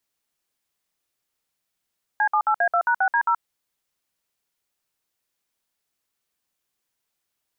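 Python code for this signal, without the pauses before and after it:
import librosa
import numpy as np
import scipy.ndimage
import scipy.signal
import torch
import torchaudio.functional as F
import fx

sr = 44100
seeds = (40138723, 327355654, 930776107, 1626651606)

y = fx.dtmf(sr, digits='C78A2#6D0', tone_ms=76, gap_ms=58, level_db=-19.5)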